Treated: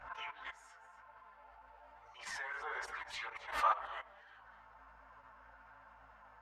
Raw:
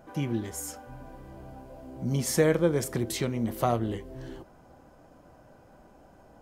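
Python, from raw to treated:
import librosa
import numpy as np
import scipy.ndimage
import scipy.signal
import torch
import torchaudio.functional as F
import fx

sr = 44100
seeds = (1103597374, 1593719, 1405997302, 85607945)

p1 = scipy.signal.sosfilt(scipy.signal.cheby2(4, 60, 300.0, 'highpass', fs=sr, output='sos'), x)
p2 = fx.add_hum(p1, sr, base_hz=60, snr_db=35)
p3 = fx.rev_fdn(p2, sr, rt60_s=0.54, lf_ratio=1.0, hf_ratio=0.4, size_ms=20.0, drr_db=7.5)
p4 = np.clip(p3, -10.0 ** (-28.0 / 20.0), 10.0 ** (-28.0 / 20.0))
p5 = p3 + F.gain(torch.from_numpy(p4), -5.0).numpy()
p6 = scipy.signal.sosfilt(scipy.signal.butter(2, 1800.0, 'lowpass', fs=sr, output='sos'), p5)
p7 = p6 + fx.echo_single(p6, sr, ms=254, db=-15.5, dry=0)
p8 = fx.level_steps(p7, sr, step_db=16)
p9 = fx.chorus_voices(p8, sr, voices=2, hz=0.91, base_ms=11, depth_ms=3.2, mix_pct=65)
p10 = fx.pitch_keep_formants(p9, sr, semitones=-2.0)
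p11 = fx.pre_swell(p10, sr, db_per_s=110.0)
y = F.gain(torch.from_numpy(p11), 7.5).numpy()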